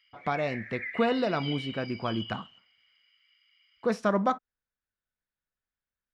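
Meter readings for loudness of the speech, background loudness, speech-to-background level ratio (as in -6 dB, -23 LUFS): -30.5 LUFS, -39.5 LUFS, 9.0 dB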